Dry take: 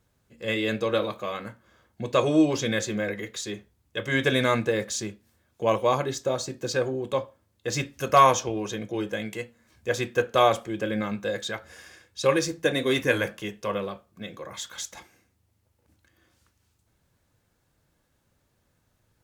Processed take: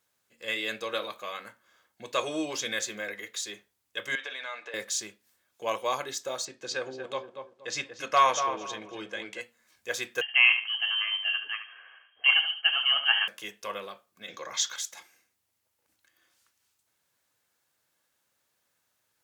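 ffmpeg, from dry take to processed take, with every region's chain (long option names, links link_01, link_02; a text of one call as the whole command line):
ffmpeg -i in.wav -filter_complex "[0:a]asettb=1/sr,asplit=3[link_01][link_02][link_03];[link_01]atrim=end=4.154[link_04];[link_02]atrim=start=4.15:end=4.74,asetpts=PTS-STARTPTS,afade=type=in:duration=0.004:curve=qsin,afade=type=out:start_time=0.586:duration=0.004:curve=qsin,acompressor=threshold=-27dB:ratio=5:attack=3.2:release=140:knee=1:detection=peak,highpass=580,lowpass=3800,aecho=1:1:6.8:0.42,atrim=end_sample=26019[link_05];[link_03]atrim=start=4.736[link_06];[link_04][link_05]acrossfade=duration=0.004:curve1=hsin:curve2=qsin[link_07];[link_07][link_06]acrossfade=duration=0.004:curve1=qsin:curve2=hsin,asettb=1/sr,asplit=3[link_08][link_09][link_10];[link_08]atrim=end=6.454[link_11];[link_09]atrim=start=6.45:end=9.41,asetpts=PTS-STARTPTS,afade=type=in:duration=0.004:curve=qsin,afade=type=out:start_time=2.956:duration=0.004:curve=qsin,lowpass=5700,asplit=2[link_12][link_13];[link_13]adelay=236,lowpass=frequency=1300:poles=1,volume=-6dB,asplit=2[link_14][link_15];[link_15]adelay=236,lowpass=frequency=1300:poles=1,volume=0.29,asplit=2[link_16][link_17];[link_17]adelay=236,lowpass=frequency=1300:poles=1,volume=0.29,asplit=2[link_18][link_19];[link_19]adelay=236,lowpass=frequency=1300:poles=1,volume=0.29[link_20];[link_12][link_14][link_16][link_18][link_20]amix=inputs=5:normalize=0,atrim=end_sample=130536[link_21];[link_10]atrim=start=9.406[link_22];[link_11][link_21]acrossfade=duration=0.004:curve1=hsin:curve2=qsin[link_23];[link_23][link_22]acrossfade=duration=0.004:curve1=qsin:curve2=hsin,asettb=1/sr,asplit=3[link_24][link_25][link_26];[link_24]atrim=end=10.214[link_27];[link_25]atrim=start=10.21:end=13.28,asetpts=PTS-STARTPTS,afade=type=in:duration=0.004:curve=qsin,afade=type=out:start_time=3.066:duration=0.004:curve=qsin,highpass=42,aecho=1:1:73|146|219:0.335|0.0971|0.0282,atrim=end_sample=135387,lowpass=frequency=2800:width_type=q:width=0.5098,lowpass=frequency=2800:width_type=q:width=0.6013,lowpass=frequency=2800:width_type=q:width=0.9,lowpass=frequency=2800:width_type=q:width=2.563,afreqshift=-3300[link_28];[link_26]atrim=start=13.276[link_29];[link_27][link_28]acrossfade=duration=0.004:curve1=hsin:curve2=qsin[link_30];[link_30][link_29]acrossfade=duration=0.004:curve1=qsin:curve2=hsin,asettb=1/sr,asplit=3[link_31][link_32][link_33];[link_31]atrim=end=14.284[link_34];[link_32]atrim=start=14.28:end=14.76,asetpts=PTS-STARTPTS,afade=type=in:duration=0.004:curve=qsin,afade=type=out:start_time=0.476:duration=0.004:curve=qsin,highpass=53,highshelf=frequency=7500:width_type=q:width=3:gain=-8,acontrast=57[link_35];[link_33]atrim=start=14.756[link_36];[link_34][link_35]acrossfade=duration=0.004:curve1=hsin:curve2=qsin[link_37];[link_37][link_36]acrossfade=duration=0.004:curve1=qsin:curve2=hsin,highpass=frequency=1400:poles=1,highshelf=frequency=11000:gain=3.5" out.wav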